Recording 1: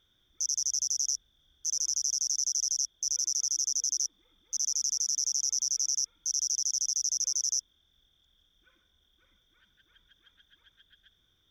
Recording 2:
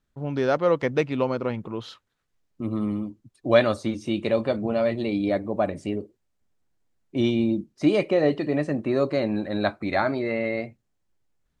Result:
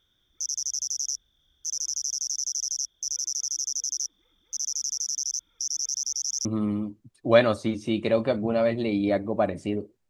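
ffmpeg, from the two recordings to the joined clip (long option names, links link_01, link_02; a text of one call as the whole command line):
ffmpeg -i cue0.wav -i cue1.wav -filter_complex "[0:a]apad=whole_dur=10.09,atrim=end=10.09,asplit=2[link_01][link_02];[link_01]atrim=end=5.202[link_03];[link_02]atrim=start=5.198:end=6.452,asetpts=PTS-STARTPTS,areverse[link_04];[1:a]atrim=start=2.648:end=6.29[link_05];[link_03][link_04]acrossfade=duration=0.004:curve1=hsin:curve2=hsin[link_06];[link_06][link_05]acrossfade=duration=0.004:curve1=hsin:curve2=hsin" out.wav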